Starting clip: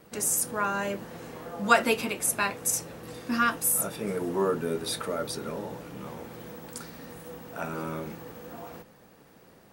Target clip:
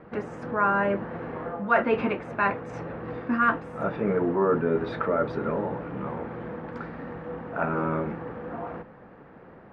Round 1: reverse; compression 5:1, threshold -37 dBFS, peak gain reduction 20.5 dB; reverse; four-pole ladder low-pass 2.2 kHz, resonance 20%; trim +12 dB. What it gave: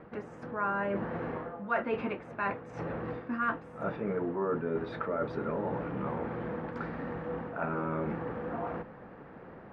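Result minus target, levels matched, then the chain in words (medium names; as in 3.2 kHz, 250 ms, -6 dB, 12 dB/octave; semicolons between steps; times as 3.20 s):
compression: peak gain reduction +9 dB
reverse; compression 5:1, threshold -26 dBFS, peak gain reduction 11.5 dB; reverse; four-pole ladder low-pass 2.2 kHz, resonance 20%; trim +12 dB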